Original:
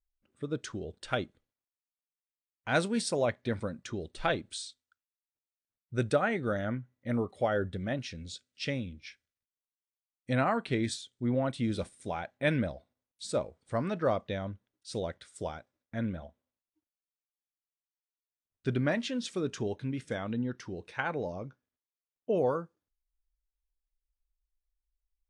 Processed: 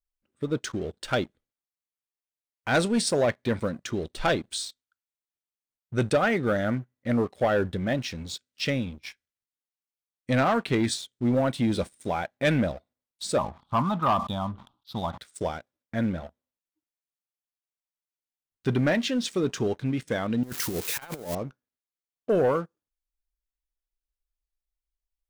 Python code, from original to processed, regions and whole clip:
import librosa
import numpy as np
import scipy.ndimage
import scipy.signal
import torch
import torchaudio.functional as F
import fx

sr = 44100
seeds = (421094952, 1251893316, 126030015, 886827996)

y = fx.chain(x, sr, fx.curve_eq(hz=(230.0, 480.0, 830.0, 1200.0, 1900.0, 3400.0, 7100.0), db=(0, -18, 9, 9, -27, 3, -28)),
    fx.sustainer(db_per_s=130.0), at=(13.38, 15.18))
y = fx.chain(y, sr, fx.crossing_spikes(level_db=-31.5),
    fx.over_compress(threshold_db=-39.0, ratio=-0.5), at=(20.43, 21.35))
y = fx.peak_eq(y, sr, hz=99.0, db=-3.5, octaves=0.55)
y = fx.leveller(y, sr, passes=2)